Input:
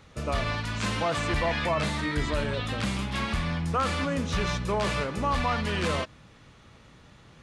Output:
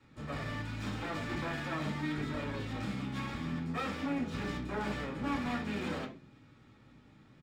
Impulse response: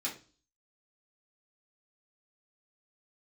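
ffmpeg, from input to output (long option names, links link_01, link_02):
-filter_complex "[0:a]lowpass=frequency=1900:poles=1,aeval=exprs='clip(val(0),-1,0.0266)':channel_layout=same,acrossover=split=280[link_01][link_02];[link_01]asplit=4[link_03][link_04][link_05][link_06];[link_04]adelay=88,afreqshift=94,volume=-14.5dB[link_07];[link_05]adelay=176,afreqshift=188,volume=-23.4dB[link_08];[link_06]adelay=264,afreqshift=282,volume=-32.2dB[link_09];[link_03][link_07][link_08][link_09]amix=inputs=4:normalize=0[link_10];[link_02]aeval=exprs='max(val(0),0)':channel_layout=same[link_11];[link_10][link_11]amix=inputs=2:normalize=0[link_12];[1:a]atrim=start_sample=2205,afade=type=out:start_time=0.2:duration=0.01,atrim=end_sample=9261[link_13];[link_12][link_13]afir=irnorm=-1:irlink=0,volume=-5dB"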